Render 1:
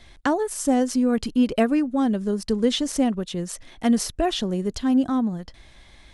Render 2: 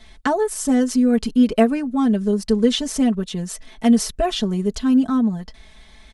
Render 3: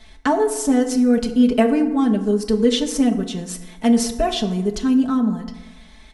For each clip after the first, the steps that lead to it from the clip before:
comb filter 4.6 ms, depth 87%
feedback delay network reverb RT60 1.2 s, low-frequency decay 0.95×, high-frequency decay 0.5×, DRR 7 dB

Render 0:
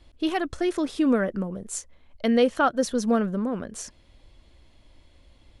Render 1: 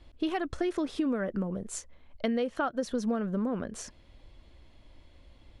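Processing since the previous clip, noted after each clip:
high-shelf EQ 5,600 Hz −9 dB
downward compressor 10 to 1, threshold −26 dBFS, peak gain reduction 11.5 dB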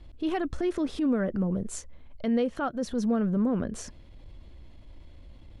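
low-shelf EQ 340 Hz +8.5 dB
transient designer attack −7 dB, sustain +1 dB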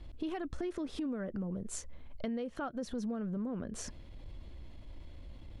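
downward compressor 6 to 1, threshold −35 dBFS, peak gain reduction 12.5 dB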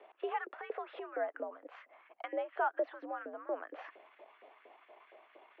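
auto-filter high-pass saw up 4.3 Hz 420–1,600 Hz
single-sideband voice off tune +80 Hz 170–2,700 Hz
level +3 dB

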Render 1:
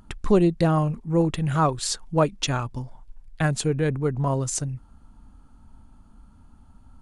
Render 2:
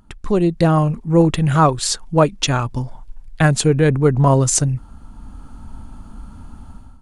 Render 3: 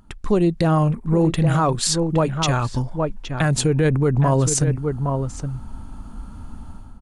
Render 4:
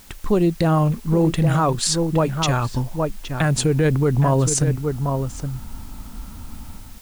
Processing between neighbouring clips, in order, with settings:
automatic gain control gain up to 16 dB; level −1 dB
gain on a spectral selection 0:00.90–0:01.16, 2,500–7,500 Hz −9 dB; slap from a distant wall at 140 metres, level −9 dB; brickwall limiter −10 dBFS, peak gain reduction 8 dB
bit-depth reduction 8 bits, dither triangular

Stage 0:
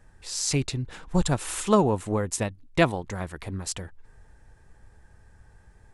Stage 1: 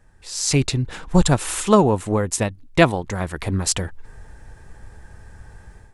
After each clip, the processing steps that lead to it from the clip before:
automatic gain control gain up to 11.5 dB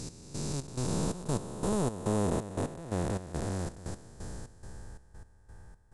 spectrum smeared in time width 1,370 ms
parametric band 2,400 Hz −9 dB 1.2 octaves
gate pattern "x...xxx..xxxx.." 175 BPM −12 dB
level −3 dB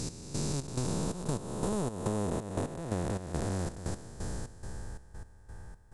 downward compressor 6 to 1, threshold −33 dBFS, peak gain reduction 9 dB
level +4.5 dB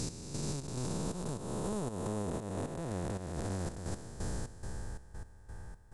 brickwall limiter −27 dBFS, peak gain reduction 9.5 dB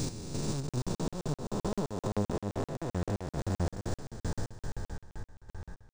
flanger 1.5 Hz, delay 6.6 ms, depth 5.4 ms, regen +55%
regular buffer underruns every 0.13 s, samples 2,048, zero, from 0:00.69
linearly interpolated sample-rate reduction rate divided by 3×
level +8.5 dB

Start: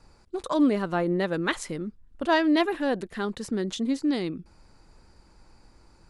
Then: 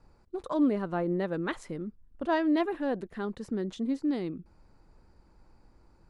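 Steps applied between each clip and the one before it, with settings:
high-shelf EQ 2,100 Hz −11.5 dB
level −3.5 dB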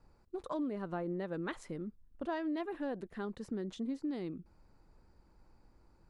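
downward compressor 6 to 1, threshold −29 dBFS, peak gain reduction 8.5 dB
level −4.5 dB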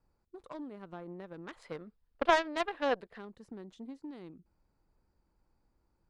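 gain on a spectral selection 0:01.57–0:03.19, 420–5,200 Hz +11 dB
harmonic generator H 3 −12 dB, 7 −38 dB, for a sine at −17.5 dBFS
level +6 dB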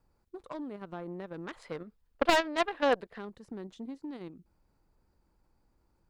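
wavefolder on the positive side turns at −19.5 dBFS
in parallel at 0 dB: output level in coarse steps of 16 dB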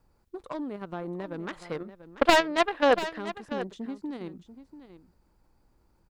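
single-tap delay 689 ms −13 dB
level +5 dB

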